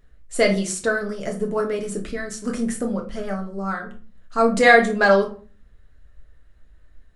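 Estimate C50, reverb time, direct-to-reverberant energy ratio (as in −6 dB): 10.5 dB, 0.40 s, 1.0 dB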